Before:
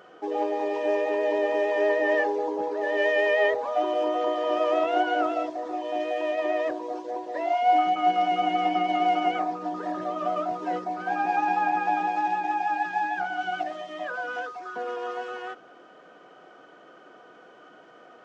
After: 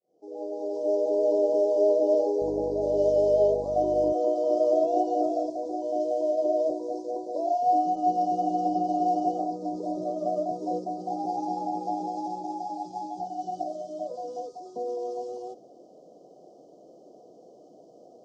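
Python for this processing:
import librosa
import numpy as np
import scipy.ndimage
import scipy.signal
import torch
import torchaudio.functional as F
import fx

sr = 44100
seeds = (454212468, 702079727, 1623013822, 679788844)

y = fx.fade_in_head(x, sr, length_s=1.18)
y = fx.dmg_buzz(y, sr, base_hz=50.0, harmonics=15, level_db=-41.0, tilt_db=-1, odd_only=False, at=(2.4, 4.12), fade=0.02)
y = scipy.signal.sosfilt(scipy.signal.cheby1(3, 1.0, [650.0, 5000.0], 'bandstop', fs=sr, output='sos'), y)
y = F.gain(torch.from_numpy(y), 2.5).numpy()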